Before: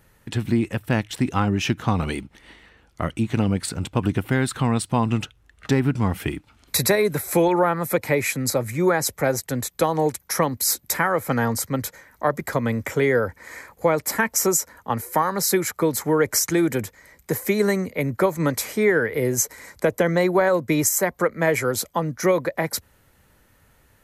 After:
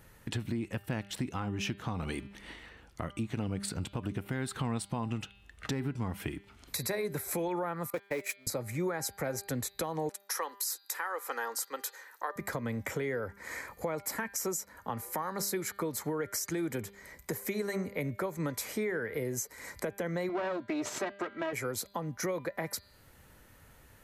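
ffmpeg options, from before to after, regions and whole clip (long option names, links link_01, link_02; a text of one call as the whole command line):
ffmpeg -i in.wav -filter_complex "[0:a]asettb=1/sr,asplit=3[link_01][link_02][link_03];[link_01]atrim=end=7.904[link_04];[link_02]atrim=start=7.9:end=8.47,asetpts=PTS-STARTPTS,afade=type=in:duration=0.004:curve=qsin,afade=type=out:start_time=0.566:duration=0.004:curve=qsin,aeval=exprs='val(0)+0.5*0.0447*sgn(val(0))':channel_layout=same,highpass=220,agate=range=-42dB:threshold=-22dB:ratio=16:release=100:detection=peak[link_05];[link_03]atrim=start=8.466[link_06];[link_04][link_05]acrossfade=duration=0.004:curve1=hsin:curve2=qsin[link_07];[link_07][link_06]acrossfade=duration=0.004:curve1=qsin:curve2=hsin,asettb=1/sr,asplit=3[link_08][link_09][link_10];[link_08]atrim=end=10.094[link_11];[link_09]atrim=start=10.09:end=12.36,asetpts=PTS-STARTPTS,afade=type=in:duration=0.004:curve=qsin,afade=type=out:start_time=2.266:duration=0.004:curve=qsin,highpass=frequency=460:width=0.5412,highpass=frequency=460:width=1.3066,equalizer=frequency=630:width=5.3:gain=-15,bandreject=frequency=2200:width=8.5[link_12];[link_10]atrim=start=12.356[link_13];[link_11][link_12]acrossfade=duration=0.004:curve1=hsin:curve2=qsin[link_14];[link_14][link_13]acrossfade=duration=0.004:curve1=qsin:curve2=hsin,asettb=1/sr,asplit=3[link_15][link_16][link_17];[link_15]atrim=end=20.294[link_18];[link_16]atrim=start=20.29:end=21.53,asetpts=PTS-STARTPTS,afade=type=in:duration=0.004:curve=qsin,afade=type=out:start_time=1.236:duration=0.004:curve=qsin,aecho=1:1:3.1:0.81,atrim=end_sample=54684,aeval=exprs='clip(val(0),-1,0.0562)':channel_layout=same,highpass=150,lowpass=4400[link_19];[link_17]atrim=start=21.526[link_20];[link_18][link_19]acrossfade=duration=0.004:curve1=hsin:curve2=qsin[link_21];[link_21][link_20]acrossfade=duration=0.004:curve1=qsin:curve2=hsin,bandreject=frequency=199.5:width_type=h:width=4,bandreject=frequency=399:width_type=h:width=4,bandreject=frequency=598.5:width_type=h:width=4,bandreject=frequency=798:width_type=h:width=4,bandreject=frequency=997.5:width_type=h:width=4,bandreject=frequency=1197:width_type=h:width=4,bandreject=frequency=1396.5:width_type=h:width=4,bandreject=frequency=1596:width_type=h:width=4,bandreject=frequency=1795.5:width_type=h:width=4,bandreject=frequency=1995:width_type=h:width=4,bandreject=frequency=2194.5:width_type=h:width=4,bandreject=frequency=2394:width_type=h:width=4,bandreject=frequency=2593.5:width_type=h:width=4,bandreject=frequency=2793:width_type=h:width=4,bandreject=frequency=2992.5:width_type=h:width=4,bandreject=frequency=3192:width_type=h:width=4,bandreject=frequency=3391.5:width_type=h:width=4,bandreject=frequency=3591:width_type=h:width=4,bandreject=frequency=3790.5:width_type=h:width=4,bandreject=frequency=3990:width_type=h:width=4,bandreject=frequency=4189.5:width_type=h:width=4,bandreject=frequency=4389:width_type=h:width=4,bandreject=frequency=4588.5:width_type=h:width=4,bandreject=frequency=4788:width_type=h:width=4,alimiter=limit=-15.5dB:level=0:latency=1:release=360,acompressor=threshold=-38dB:ratio=2" out.wav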